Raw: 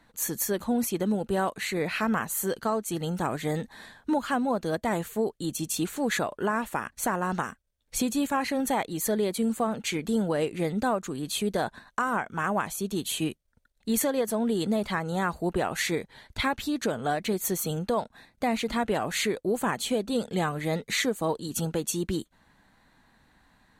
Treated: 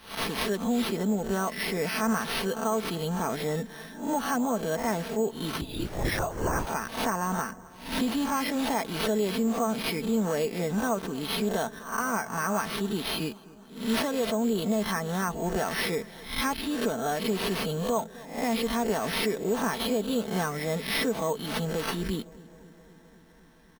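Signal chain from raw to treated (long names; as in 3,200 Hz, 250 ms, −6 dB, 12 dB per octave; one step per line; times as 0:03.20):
peak hold with a rise ahead of every peak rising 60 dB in 0.42 s
comb filter 4.5 ms, depth 50%
in parallel at 0 dB: brickwall limiter −21.5 dBFS, peak gain reduction 10.5 dB
0:05.61–0:06.67: on the sum: linear-prediction vocoder at 8 kHz whisper
feedback echo with a low-pass in the loop 259 ms, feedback 75%, low-pass 2,000 Hz, level −20.5 dB
bad sample-rate conversion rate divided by 6×, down none, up hold
level −7 dB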